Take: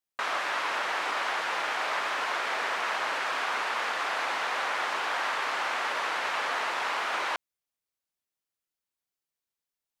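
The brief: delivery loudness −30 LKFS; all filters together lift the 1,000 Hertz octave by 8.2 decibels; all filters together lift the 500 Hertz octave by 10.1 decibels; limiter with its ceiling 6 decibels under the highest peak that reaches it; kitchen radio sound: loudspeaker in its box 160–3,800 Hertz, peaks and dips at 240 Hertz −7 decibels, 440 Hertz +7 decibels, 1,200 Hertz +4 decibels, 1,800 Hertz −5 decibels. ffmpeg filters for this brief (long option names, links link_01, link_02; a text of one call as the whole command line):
ffmpeg -i in.wav -af "equalizer=frequency=500:width_type=o:gain=8,equalizer=frequency=1000:width_type=o:gain=6,alimiter=limit=-18dB:level=0:latency=1,highpass=160,equalizer=frequency=240:width_type=q:width=4:gain=-7,equalizer=frequency=440:width_type=q:width=4:gain=7,equalizer=frequency=1200:width_type=q:width=4:gain=4,equalizer=frequency=1800:width_type=q:width=4:gain=-5,lowpass=frequency=3800:width=0.5412,lowpass=frequency=3800:width=1.3066,volume=-4.5dB" out.wav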